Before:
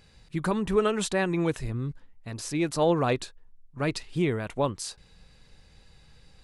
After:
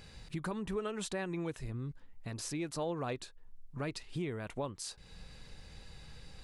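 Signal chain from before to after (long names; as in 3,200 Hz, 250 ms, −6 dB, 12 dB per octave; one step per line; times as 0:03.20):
downward compressor 2.5 to 1, threshold −47 dBFS, peak gain reduction 19 dB
level +4 dB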